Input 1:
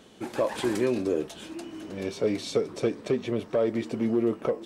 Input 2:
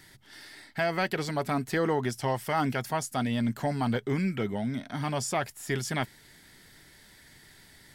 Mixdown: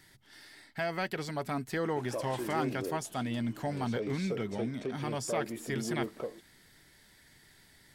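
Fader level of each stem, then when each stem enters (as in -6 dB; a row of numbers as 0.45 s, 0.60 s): -11.0 dB, -5.5 dB; 1.75 s, 0.00 s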